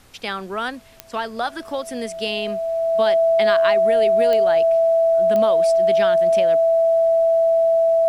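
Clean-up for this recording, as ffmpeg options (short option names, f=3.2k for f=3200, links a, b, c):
-af "adeclick=t=4,bandreject=f=660:w=30,agate=range=-21dB:threshold=-26dB"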